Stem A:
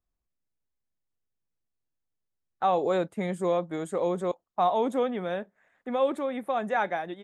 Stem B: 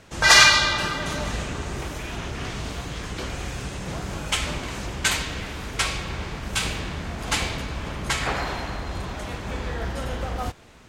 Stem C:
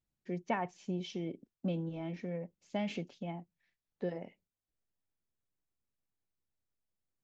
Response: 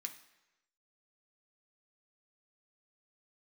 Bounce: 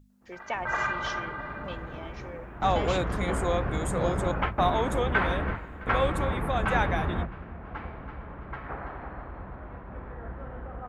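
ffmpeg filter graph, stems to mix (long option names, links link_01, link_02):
-filter_complex "[0:a]lowshelf=frequency=390:gain=-8,aeval=exprs='val(0)+0.00251*(sin(2*PI*50*n/s)+sin(2*PI*2*50*n/s)/2+sin(2*PI*3*50*n/s)/3+sin(2*PI*4*50*n/s)/4+sin(2*PI*5*50*n/s)/5)':channel_layout=same,volume=-0.5dB,asplit=2[link_01][link_02];[1:a]lowpass=frequency=1500:width=0.5412,lowpass=frequency=1500:width=1.3066,adelay=100,volume=2.5dB,asplit=2[link_03][link_04];[link_04]volume=-13.5dB[link_05];[2:a]highpass=490,volume=1.5dB[link_06];[link_02]apad=whole_len=484584[link_07];[link_03][link_07]sidechaingate=range=-33dB:threshold=-49dB:ratio=16:detection=peak[link_08];[link_05]aecho=0:1:331|662|993|1324|1655|1986:1|0.43|0.185|0.0795|0.0342|0.0147[link_09];[link_01][link_08][link_06][link_09]amix=inputs=4:normalize=0,highshelf=frequency=2600:gain=9.5,bandreject=frequency=50:width_type=h:width=6,bandreject=frequency=100:width_type=h:width=6,bandreject=frequency=150:width_type=h:width=6"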